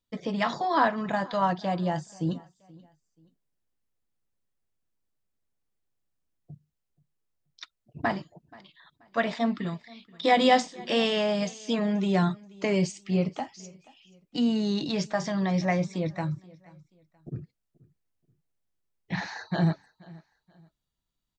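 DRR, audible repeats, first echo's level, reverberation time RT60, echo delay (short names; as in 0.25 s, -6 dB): none, 2, -23.0 dB, none, 0.48 s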